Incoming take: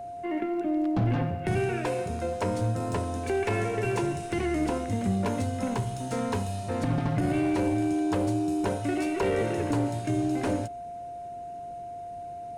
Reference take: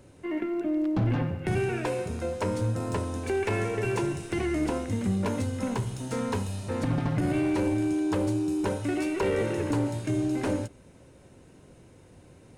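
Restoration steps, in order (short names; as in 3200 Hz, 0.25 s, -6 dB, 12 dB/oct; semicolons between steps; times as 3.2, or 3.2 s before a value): notch 700 Hz, Q 30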